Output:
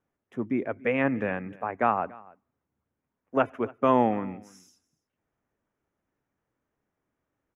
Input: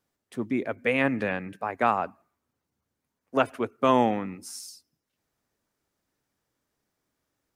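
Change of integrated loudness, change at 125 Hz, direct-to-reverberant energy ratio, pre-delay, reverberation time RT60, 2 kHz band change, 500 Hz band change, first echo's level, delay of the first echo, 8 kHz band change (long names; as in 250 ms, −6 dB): −0.5 dB, 0.0 dB, no reverb audible, no reverb audible, no reverb audible, −3.0 dB, 0.0 dB, −23.0 dB, 286 ms, below −15 dB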